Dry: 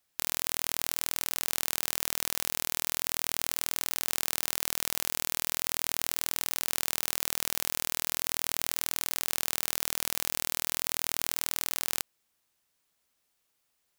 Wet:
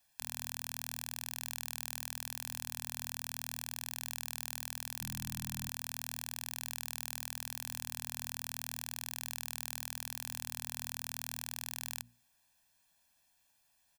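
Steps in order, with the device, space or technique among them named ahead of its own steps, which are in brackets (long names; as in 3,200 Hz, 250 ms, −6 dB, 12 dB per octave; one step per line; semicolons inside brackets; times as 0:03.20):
mains-hum notches 60/120/180/240 Hz
comb filter 1.2 ms, depth 90%
limiter into clipper (brickwall limiter −10.5 dBFS, peak gain reduction 8 dB; hard clipping −15.5 dBFS, distortion −23 dB)
0:05.01–0:05.69: low shelf with overshoot 270 Hz +10 dB, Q 3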